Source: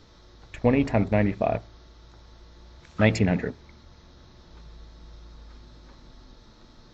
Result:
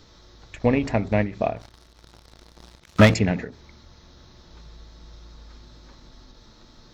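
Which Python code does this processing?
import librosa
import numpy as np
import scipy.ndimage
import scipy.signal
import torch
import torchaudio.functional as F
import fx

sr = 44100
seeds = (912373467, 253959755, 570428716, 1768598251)

y = fx.high_shelf(x, sr, hz=4100.0, db=6.5)
y = fx.leveller(y, sr, passes=3, at=(1.56, 3.14))
y = fx.end_taper(y, sr, db_per_s=150.0)
y = y * librosa.db_to_amplitude(1.0)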